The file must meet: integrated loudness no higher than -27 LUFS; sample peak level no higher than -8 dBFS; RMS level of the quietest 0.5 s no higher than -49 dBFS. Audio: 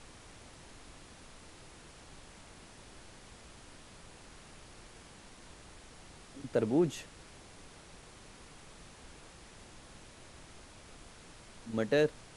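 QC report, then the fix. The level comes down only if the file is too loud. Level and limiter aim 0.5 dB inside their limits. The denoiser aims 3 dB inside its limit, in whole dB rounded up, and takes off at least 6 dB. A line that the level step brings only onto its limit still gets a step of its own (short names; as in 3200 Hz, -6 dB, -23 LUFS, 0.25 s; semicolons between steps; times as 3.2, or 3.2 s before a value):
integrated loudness -32.5 LUFS: OK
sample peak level -17.0 dBFS: OK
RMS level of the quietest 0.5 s -54 dBFS: OK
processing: none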